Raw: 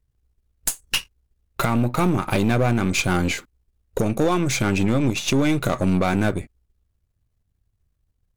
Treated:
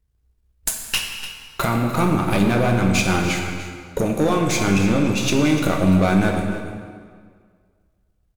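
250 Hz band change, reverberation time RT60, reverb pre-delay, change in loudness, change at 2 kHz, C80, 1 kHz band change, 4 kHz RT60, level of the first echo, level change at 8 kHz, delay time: +3.0 dB, 1.9 s, 7 ms, +2.0 dB, +2.5 dB, 4.5 dB, +2.5 dB, 1.4 s, -12.5 dB, +1.5 dB, 0.295 s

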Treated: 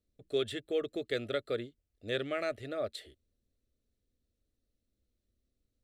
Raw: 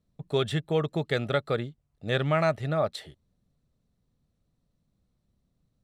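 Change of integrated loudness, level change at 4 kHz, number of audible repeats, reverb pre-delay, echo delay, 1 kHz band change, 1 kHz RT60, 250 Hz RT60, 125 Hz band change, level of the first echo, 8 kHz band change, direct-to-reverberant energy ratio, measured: -7.5 dB, -5.0 dB, none, none, none, -13.0 dB, none, none, -18.5 dB, none, n/a, none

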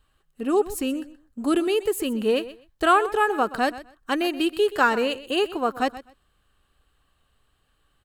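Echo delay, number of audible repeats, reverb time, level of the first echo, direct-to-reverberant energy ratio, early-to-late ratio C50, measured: 0.126 s, 2, none, -16.0 dB, none, none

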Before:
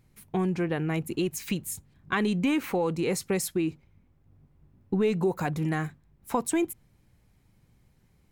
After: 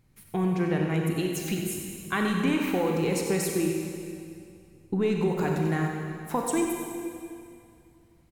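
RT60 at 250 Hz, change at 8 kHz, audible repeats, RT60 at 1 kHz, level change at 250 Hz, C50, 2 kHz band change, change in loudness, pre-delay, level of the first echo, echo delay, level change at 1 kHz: 2.5 s, +1.0 dB, 1, 2.4 s, +1.5 dB, 1.0 dB, +1.5 dB, +1.0 dB, 27 ms, -9.0 dB, 93 ms, +1.5 dB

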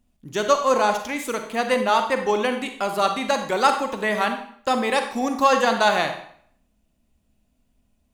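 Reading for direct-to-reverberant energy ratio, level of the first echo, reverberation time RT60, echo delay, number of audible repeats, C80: 6.0 dB, none, 0.60 s, none, none, 11.0 dB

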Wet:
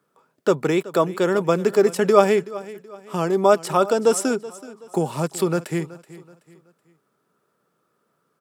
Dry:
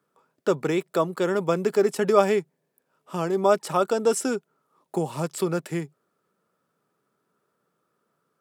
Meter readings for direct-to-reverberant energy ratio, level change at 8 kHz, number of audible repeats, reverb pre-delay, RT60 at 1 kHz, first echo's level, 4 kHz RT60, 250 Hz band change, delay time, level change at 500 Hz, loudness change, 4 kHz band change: none, +4.0 dB, 2, none, none, -18.0 dB, none, +4.0 dB, 0.377 s, +4.0 dB, +4.0 dB, +4.0 dB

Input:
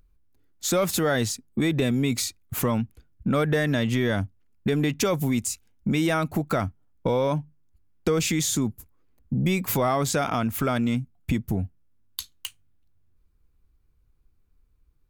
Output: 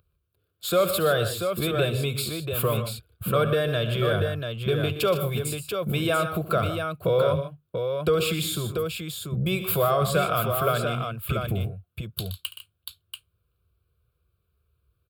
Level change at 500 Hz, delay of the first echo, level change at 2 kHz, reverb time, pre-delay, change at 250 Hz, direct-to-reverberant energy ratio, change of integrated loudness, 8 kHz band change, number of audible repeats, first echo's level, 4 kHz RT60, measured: +3.5 dB, 71 ms, 0.0 dB, none, none, -6.0 dB, none, 0.0 dB, -5.0 dB, 3, -15.5 dB, none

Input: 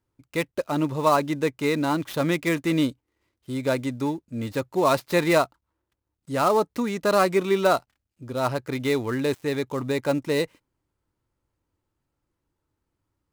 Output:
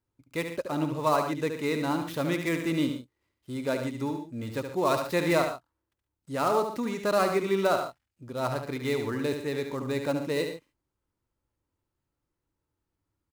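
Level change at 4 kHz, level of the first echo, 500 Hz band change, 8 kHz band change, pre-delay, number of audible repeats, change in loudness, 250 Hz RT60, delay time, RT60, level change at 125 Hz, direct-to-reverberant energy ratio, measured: -4.5 dB, -7.0 dB, -4.5 dB, -4.5 dB, none, 2, -4.5 dB, none, 72 ms, none, -4.5 dB, none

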